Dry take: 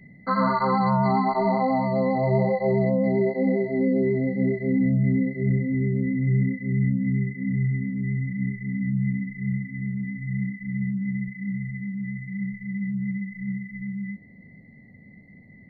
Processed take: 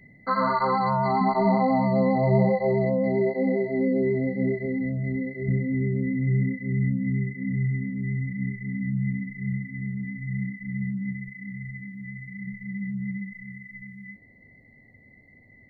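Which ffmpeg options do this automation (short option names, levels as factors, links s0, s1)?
-af "asetnsamples=n=441:p=0,asendcmd='1.21 equalizer g 3.5;2.61 equalizer g -4;4.66 equalizer g -13.5;5.48 equalizer g -3;11.13 equalizer g -9.5;12.47 equalizer g -3.5;13.33 equalizer g -14.5',equalizer=f=180:t=o:w=0.86:g=-8"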